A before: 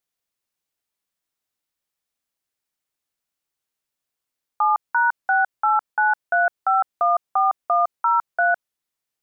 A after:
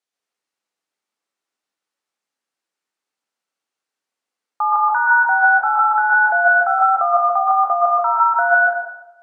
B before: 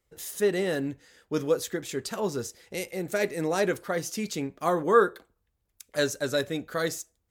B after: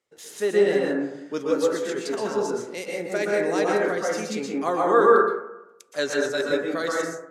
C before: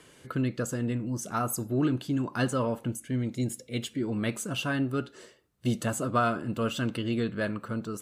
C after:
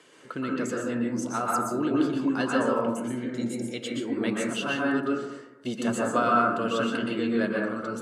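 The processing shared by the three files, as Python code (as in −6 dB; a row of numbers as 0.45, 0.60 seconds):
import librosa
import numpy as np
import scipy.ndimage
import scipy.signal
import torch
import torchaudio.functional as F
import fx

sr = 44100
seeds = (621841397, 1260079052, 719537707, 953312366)

y = fx.bandpass_edges(x, sr, low_hz=260.0, high_hz=7900.0)
y = fx.rev_plate(y, sr, seeds[0], rt60_s=0.88, hf_ratio=0.25, predelay_ms=110, drr_db=-3.0)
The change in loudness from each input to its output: +6.0, +5.0, +3.0 LU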